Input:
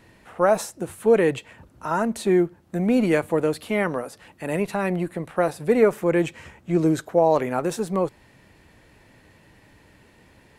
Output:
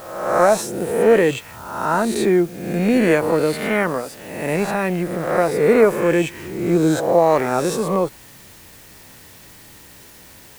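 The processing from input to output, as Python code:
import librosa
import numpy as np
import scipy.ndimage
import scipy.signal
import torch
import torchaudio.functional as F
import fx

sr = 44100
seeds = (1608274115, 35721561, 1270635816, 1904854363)

y = fx.spec_swells(x, sr, rise_s=0.93)
y = fx.quant_dither(y, sr, seeds[0], bits=8, dither='triangular')
y = F.gain(torch.from_numpy(y), 2.5).numpy()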